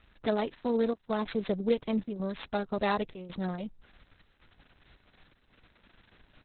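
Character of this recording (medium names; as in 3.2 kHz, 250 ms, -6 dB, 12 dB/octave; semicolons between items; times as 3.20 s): a buzz of ramps at a fixed pitch in blocks of 8 samples; chopped level 0.91 Hz, depth 65%, duty 85%; Opus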